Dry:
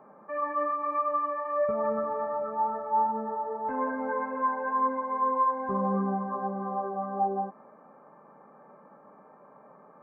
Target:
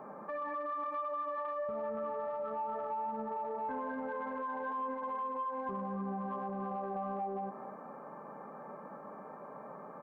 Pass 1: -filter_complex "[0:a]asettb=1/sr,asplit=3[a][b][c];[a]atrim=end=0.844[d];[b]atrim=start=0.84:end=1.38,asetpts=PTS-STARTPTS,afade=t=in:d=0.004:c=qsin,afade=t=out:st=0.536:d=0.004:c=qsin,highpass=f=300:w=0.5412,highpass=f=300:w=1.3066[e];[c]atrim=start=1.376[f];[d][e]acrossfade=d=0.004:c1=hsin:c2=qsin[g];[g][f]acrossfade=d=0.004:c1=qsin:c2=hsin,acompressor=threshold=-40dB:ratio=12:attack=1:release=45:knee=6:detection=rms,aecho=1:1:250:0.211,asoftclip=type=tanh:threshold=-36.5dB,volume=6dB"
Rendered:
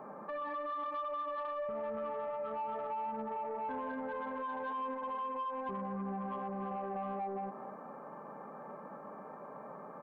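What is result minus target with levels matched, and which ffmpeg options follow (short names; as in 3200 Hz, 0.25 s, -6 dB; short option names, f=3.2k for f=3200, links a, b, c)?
soft clip: distortion +13 dB
-filter_complex "[0:a]asettb=1/sr,asplit=3[a][b][c];[a]atrim=end=0.844[d];[b]atrim=start=0.84:end=1.38,asetpts=PTS-STARTPTS,afade=t=in:d=0.004:c=qsin,afade=t=out:st=0.536:d=0.004:c=qsin,highpass=f=300:w=0.5412,highpass=f=300:w=1.3066[e];[c]atrim=start=1.376[f];[d][e]acrossfade=d=0.004:c1=hsin:c2=qsin[g];[g][f]acrossfade=d=0.004:c1=qsin:c2=hsin,acompressor=threshold=-40dB:ratio=12:attack=1:release=45:knee=6:detection=rms,aecho=1:1:250:0.211,asoftclip=type=tanh:threshold=-29.5dB,volume=6dB"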